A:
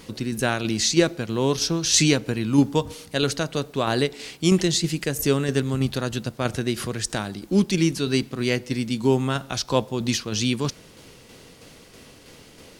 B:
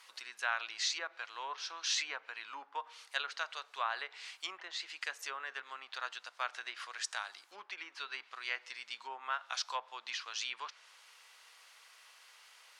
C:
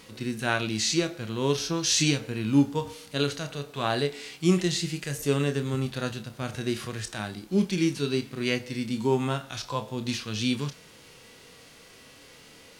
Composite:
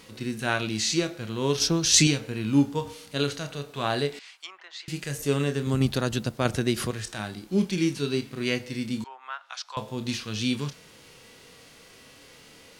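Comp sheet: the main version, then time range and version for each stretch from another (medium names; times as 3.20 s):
C
1.60–2.07 s: from A
4.19–4.88 s: from B
5.67–6.91 s: from A
9.04–9.77 s: from B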